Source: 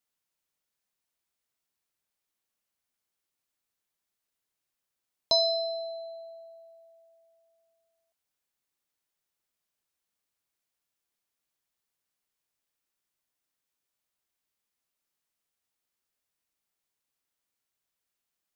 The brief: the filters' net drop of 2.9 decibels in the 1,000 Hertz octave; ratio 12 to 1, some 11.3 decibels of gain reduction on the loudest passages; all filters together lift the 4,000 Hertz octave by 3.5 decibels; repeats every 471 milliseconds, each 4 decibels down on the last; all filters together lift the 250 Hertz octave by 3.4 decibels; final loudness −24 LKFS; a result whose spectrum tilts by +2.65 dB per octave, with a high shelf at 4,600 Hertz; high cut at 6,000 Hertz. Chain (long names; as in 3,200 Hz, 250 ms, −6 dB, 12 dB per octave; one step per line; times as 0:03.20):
low-pass filter 6,000 Hz
parametric band 250 Hz +5 dB
parametric band 1,000 Hz −7 dB
parametric band 4,000 Hz +8.5 dB
high-shelf EQ 4,600 Hz −8.5 dB
downward compressor 12 to 1, threshold −29 dBFS
repeating echo 471 ms, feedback 63%, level −4 dB
level +11 dB